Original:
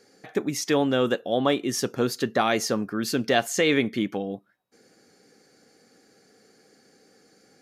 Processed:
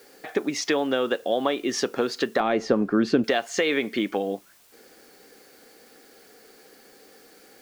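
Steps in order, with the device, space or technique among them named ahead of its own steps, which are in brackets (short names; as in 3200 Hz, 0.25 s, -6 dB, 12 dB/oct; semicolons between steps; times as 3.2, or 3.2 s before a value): baby monitor (BPF 310–4400 Hz; compressor, threshold -27 dBFS, peak gain reduction 10.5 dB; white noise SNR 29 dB); 2.4–3.24 tilt -3.5 dB/oct; gain +7 dB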